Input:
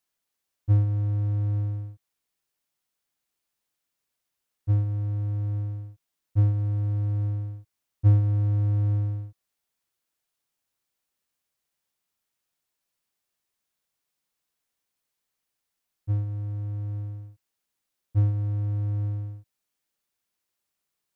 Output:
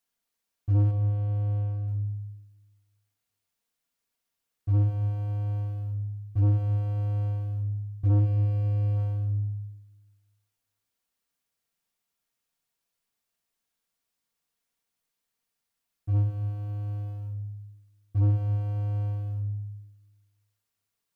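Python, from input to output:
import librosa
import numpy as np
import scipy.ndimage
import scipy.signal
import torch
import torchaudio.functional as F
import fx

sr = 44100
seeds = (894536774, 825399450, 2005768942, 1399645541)

y = fx.lowpass(x, sr, hz=1100.0, slope=6, at=(0.91, 1.88))
y = fx.leveller(y, sr, passes=1)
y = fx.room_shoebox(y, sr, seeds[0], volume_m3=2800.0, walls='furnished', distance_m=1.7)
y = 10.0 ** (-18.0 / 20.0) * np.tanh(y / 10.0 ** (-18.0 / 20.0))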